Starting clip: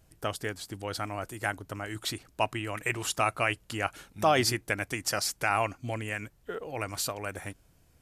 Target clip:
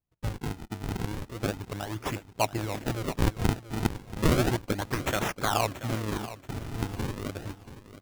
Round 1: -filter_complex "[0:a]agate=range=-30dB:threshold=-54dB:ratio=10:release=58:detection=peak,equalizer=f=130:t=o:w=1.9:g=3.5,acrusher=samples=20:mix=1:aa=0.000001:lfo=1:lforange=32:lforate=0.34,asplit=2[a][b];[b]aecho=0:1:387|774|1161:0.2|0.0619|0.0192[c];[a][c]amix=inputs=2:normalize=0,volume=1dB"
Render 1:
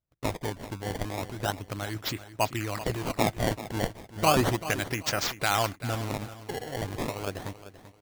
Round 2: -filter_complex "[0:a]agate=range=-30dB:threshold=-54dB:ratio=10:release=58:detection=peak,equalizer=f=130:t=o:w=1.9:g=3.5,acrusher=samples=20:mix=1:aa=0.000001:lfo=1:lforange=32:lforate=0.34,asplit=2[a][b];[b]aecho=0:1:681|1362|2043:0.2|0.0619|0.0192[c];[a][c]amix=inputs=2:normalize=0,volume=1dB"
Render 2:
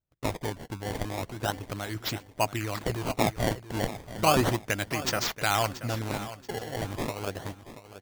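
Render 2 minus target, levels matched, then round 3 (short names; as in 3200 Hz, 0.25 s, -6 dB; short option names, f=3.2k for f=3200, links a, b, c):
decimation with a swept rate: distortion -7 dB
-filter_complex "[0:a]agate=range=-30dB:threshold=-54dB:ratio=10:release=58:detection=peak,equalizer=f=130:t=o:w=1.9:g=3.5,acrusher=samples=45:mix=1:aa=0.000001:lfo=1:lforange=72:lforate=0.34,asplit=2[a][b];[b]aecho=0:1:681|1362|2043:0.2|0.0619|0.0192[c];[a][c]amix=inputs=2:normalize=0,volume=1dB"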